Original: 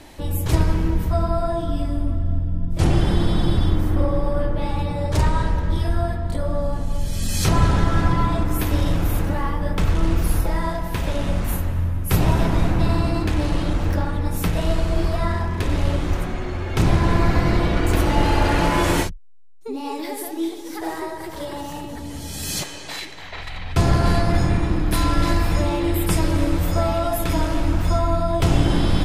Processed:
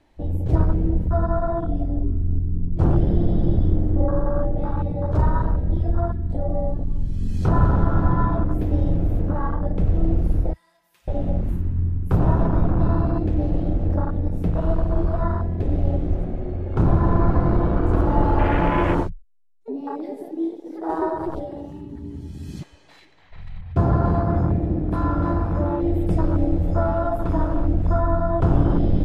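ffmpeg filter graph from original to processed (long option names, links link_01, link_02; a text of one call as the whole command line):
ffmpeg -i in.wav -filter_complex "[0:a]asettb=1/sr,asplit=3[link_01][link_02][link_03];[link_01]atrim=end=10.534[link_04];[link_02]atrim=start=10.53:end=11.08,asetpts=PTS-STARTPTS,afade=type=in:duration=0.004:curve=qsin,afade=type=out:start_time=0.546:duration=0.004:curve=qsin,aderivative,aecho=1:1:5.7:0.57,atrim=end_sample=24255[link_05];[link_03]atrim=start=11.076[link_06];[link_04][link_05]acrossfade=duration=0.004:curve1=hsin:curve2=qsin[link_07];[link_07][link_06]acrossfade=duration=0.004:curve1=qsin:curve2=hsin,asettb=1/sr,asplit=3[link_08][link_09][link_10];[link_08]atrim=end=20.894[link_11];[link_09]atrim=start=20.89:end=21.4,asetpts=PTS-STARTPTS,afade=type=in:duration=0.004:curve=qsin,afade=type=out:start_time=0.506:duration=0.004:curve=qsin,asuperstop=centerf=1800:order=4:qfactor=2.3,acontrast=76[link_12];[link_10]atrim=start=21.396[link_13];[link_11][link_12]acrossfade=duration=0.004:curve1=hsin:curve2=qsin[link_14];[link_14][link_13]acrossfade=duration=0.004:curve1=qsin:curve2=hsin,asettb=1/sr,asplit=3[link_15][link_16][link_17];[link_15]atrim=end=23.614[link_18];[link_16]atrim=start=23.61:end=25.8,asetpts=PTS-STARTPTS,afade=type=in:duration=0.004:curve=qsin,afade=type=out:start_time=2.186:duration=0.004:curve=qsin,highpass=53,adynamicequalizer=threshold=0.01:dfrequency=2400:dqfactor=0.7:tfrequency=2400:tqfactor=0.7:attack=5:release=100:ratio=0.375:range=2.5:mode=cutabove:tftype=highshelf[link_19];[link_17]atrim=start=25.796[link_20];[link_18][link_19]acrossfade=duration=0.004:curve1=hsin:curve2=qsin[link_21];[link_21][link_20]acrossfade=duration=0.004:curve1=qsin:curve2=hsin,afwtdn=0.0631,lowpass=frequency=2400:poles=1" out.wav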